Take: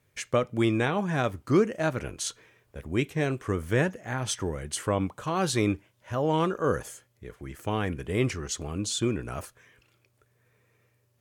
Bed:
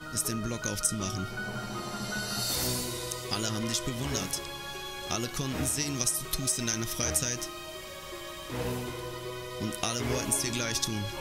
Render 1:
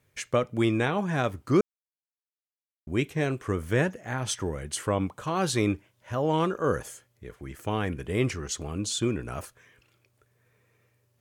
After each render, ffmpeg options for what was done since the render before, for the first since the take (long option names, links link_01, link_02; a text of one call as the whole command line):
ffmpeg -i in.wav -filter_complex "[0:a]asplit=3[link_01][link_02][link_03];[link_01]atrim=end=1.61,asetpts=PTS-STARTPTS,afade=type=out:start_time=1.606:duration=0.004:curve=hsin[link_04];[link_02]atrim=start=1.61:end=2.87,asetpts=PTS-STARTPTS,volume=0[link_05];[link_03]atrim=start=2.87,asetpts=PTS-STARTPTS,afade=type=in:duration=0.004:curve=hsin[link_06];[link_04][link_05][link_06]concat=n=3:v=0:a=1" out.wav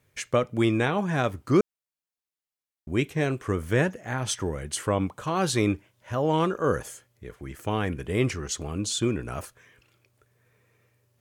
ffmpeg -i in.wav -af "volume=1.5dB" out.wav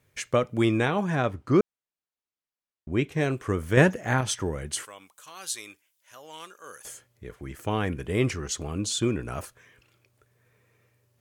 ffmpeg -i in.wav -filter_complex "[0:a]asettb=1/sr,asplit=3[link_01][link_02][link_03];[link_01]atrim=end=1.154[link_04];[link_02]atrim=start=1.15:end=3.12,asetpts=PTS-STARTPTS,afade=type=in:duration=0.004:curve=qsin,afade=type=out:start_time=1.966:duration=0.004:curve=qsin,aemphasis=mode=reproduction:type=50kf[link_05];[link_03]atrim=start=3.116[link_06];[link_04][link_05]acrossfade=duration=0.004:curve1=hsin:curve2=qsin[link_07];[link_07][link_06]acrossfade=duration=0.004:curve1=qsin:curve2=hsin,asettb=1/sr,asplit=3[link_08][link_09][link_10];[link_08]atrim=end=3.774[link_11];[link_09]atrim=start=3.77:end=4.21,asetpts=PTS-STARTPTS,afade=type=in:duration=0.004:curve=qsin,afade=type=out:start_time=0.436:duration=0.004:curve=qsin,acontrast=50[link_12];[link_10]atrim=start=4.206[link_13];[link_11][link_12]acrossfade=duration=0.004:curve1=hsin:curve2=qsin[link_14];[link_14][link_13]acrossfade=duration=0.004:curve1=qsin:curve2=hsin,asettb=1/sr,asplit=3[link_15][link_16][link_17];[link_15]atrim=end=4.854[link_18];[link_16]atrim=start=4.85:end=6.85,asetpts=PTS-STARTPTS,afade=type=in:duration=0.004:curve=qsin,afade=type=out:start_time=1.996:duration=0.004:curve=qsin,aderivative[link_19];[link_17]atrim=start=6.846[link_20];[link_18][link_19]acrossfade=duration=0.004:curve1=hsin:curve2=qsin[link_21];[link_21][link_20]acrossfade=duration=0.004:curve1=qsin:curve2=hsin" out.wav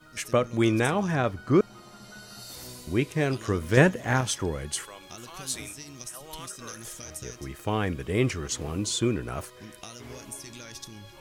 ffmpeg -i in.wav -i bed.wav -filter_complex "[1:a]volume=-12dB[link_01];[0:a][link_01]amix=inputs=2:normalize=0" out.wav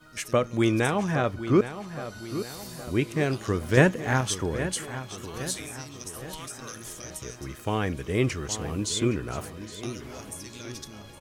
ffmpeg -i in.wav -filter_complex "[0:a]asplit=2[link_01][link_02];[link_02]adelay=816,lowpass=frequency=4700:poles=1,volume=-11.5dB,asplit=2[link_03][link_04];[link_04]adelay=816,lowpass=frequency=4700:poles=1,volume=0.51,asplit=2[link_05][link_06];[link_06]adelay=816,lowpass=frequency=4700:poles=1,volume=0.51,asplit=2[link_07][link_08];[link_08]adelay=816,lowpass=frequency=4700:poles=1,volume=0.51,asplit=2[link_09][link_10];[link_10]adelay=816,lowpass=frequency=4700:poles=1,volume=0.51[link_11];[link_01][link_03][link_05][link_07][link_09][link_11]amix=inputs=6:normalize=0" out.wav